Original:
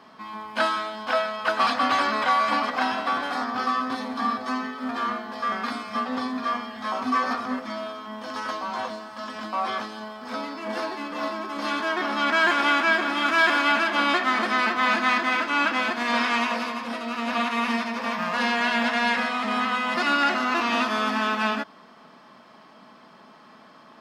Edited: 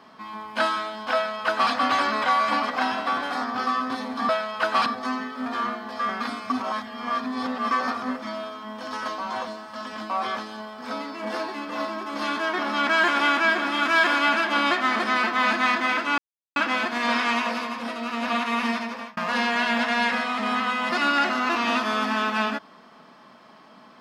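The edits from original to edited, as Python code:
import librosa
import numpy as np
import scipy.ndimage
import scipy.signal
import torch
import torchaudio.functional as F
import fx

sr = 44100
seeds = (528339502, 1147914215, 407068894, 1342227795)

y = fx.edit(x, sr, fx.duplicate(start_s=1.14, length_s=0.57, to_s=4.29),
    fx.reverse_span(start_s=5.93, length_s=1.21),
    fx.insert_silence(at_s=15.61, length_s=0.38),
    fx.fade_out_span(start_s=17.86, length_s=0.36), tone=tone)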